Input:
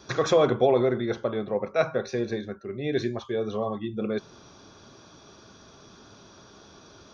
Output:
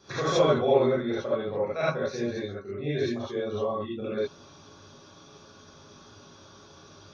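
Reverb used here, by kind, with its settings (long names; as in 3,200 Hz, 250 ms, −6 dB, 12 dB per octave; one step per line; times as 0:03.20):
reverb whose tail is shaped and stops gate 100 ms rising, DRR −8 dB
level −9 dB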